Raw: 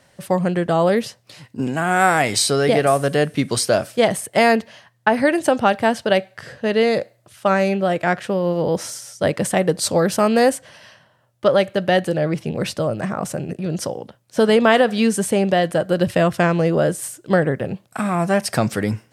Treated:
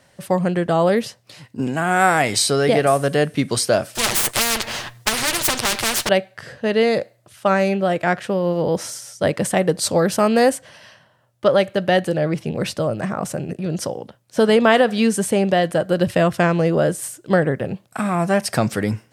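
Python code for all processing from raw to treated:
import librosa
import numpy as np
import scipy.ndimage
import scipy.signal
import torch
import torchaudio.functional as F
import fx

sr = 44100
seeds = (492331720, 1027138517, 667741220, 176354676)

y = fx.chain(x, sr, fx.lower_of_two(delay_ms=8.5),
    fx.spectral_comp(ratio=4.0), at=(3.95, 6.09))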